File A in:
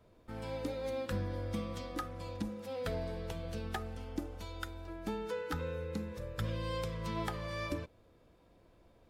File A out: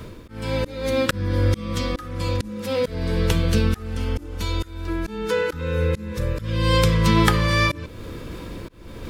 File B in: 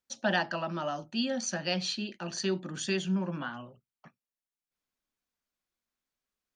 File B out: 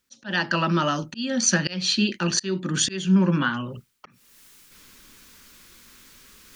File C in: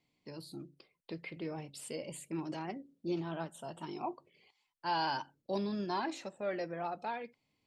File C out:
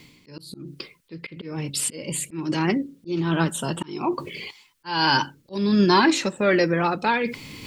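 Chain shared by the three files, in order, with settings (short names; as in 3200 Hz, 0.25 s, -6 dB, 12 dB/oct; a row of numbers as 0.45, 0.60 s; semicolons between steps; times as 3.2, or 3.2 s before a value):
bell 700 Hz -13.5 dB 0.65 oct; reverse; upward compressor, threshold -45 dBFS; reverse; auto swell 0.367 s; match loudness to -23 LUFS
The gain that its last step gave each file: +22.5, +15.0, +22.0 dB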